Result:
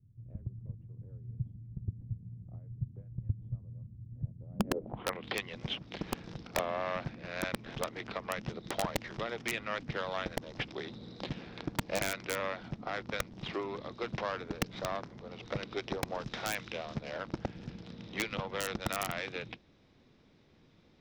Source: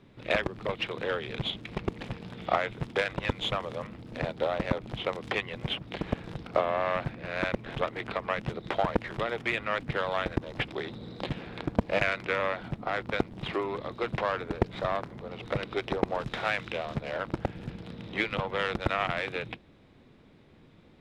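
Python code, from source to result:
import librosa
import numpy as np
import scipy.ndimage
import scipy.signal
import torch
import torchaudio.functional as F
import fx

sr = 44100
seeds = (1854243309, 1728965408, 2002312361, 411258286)

y = fx.filter_sweep_lowpass(x, sr, from_hz=110.0, to_hz=5700.0, start_s=4.46, end_s=5.38, q=3.5)
y = (np.mod(10.0 ** (14.0 / 20.0) * y + 1.0, 2.0) - 1.0) / 10.0 ** (14.0 / 20.0)
y = fx.dynamic_eq(y, sr, hz=220.0, q=1.3, threshold_db=-44.0, ratio=4.0, max_db=4)
y = F.gain(torch.from_numpy(y), -7.0).numpy()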